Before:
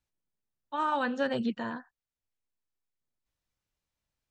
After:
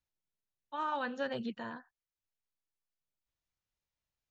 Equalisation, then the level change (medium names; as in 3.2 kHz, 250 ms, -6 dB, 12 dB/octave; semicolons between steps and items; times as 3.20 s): elliptic low-pass 7 kHz; peaking EQ 260 Hz -3 dB 0.63 oct; -5.0 dB